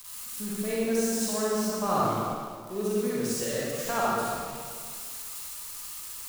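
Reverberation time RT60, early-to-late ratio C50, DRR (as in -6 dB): 2.0 s, -5.5 dB, -7.5 dB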